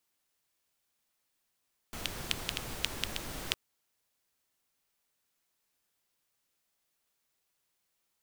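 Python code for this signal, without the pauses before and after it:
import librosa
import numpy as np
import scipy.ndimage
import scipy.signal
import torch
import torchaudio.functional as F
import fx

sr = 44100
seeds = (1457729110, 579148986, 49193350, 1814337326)

y = fx.rain(sr, seeds[0], length_s=1.61, drops_per_s=5.0, hz=3000.0, bed_db=0)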